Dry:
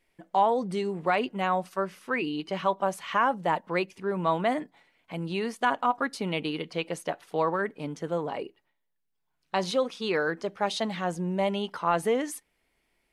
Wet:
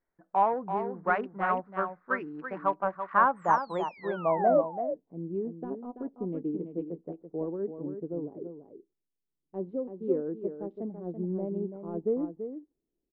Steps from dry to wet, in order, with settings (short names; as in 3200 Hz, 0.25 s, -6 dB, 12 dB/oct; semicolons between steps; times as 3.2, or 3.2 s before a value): Wiener smoothing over 15 samples; painted sound fall, 3.36–4.61, 530–8800 Hz -25 dBFS; in parallel at -7 dB: soft clip -19.5 dBFS, distortion -14 dB; on the sum: low-pass sweep 1500 Hz -> 360 Hz, 3.06–5.15; on a send: echo 0.334 s -6 dB; on the sum: upward expander 1.5:1, over -33 dBFS; gain -5 dB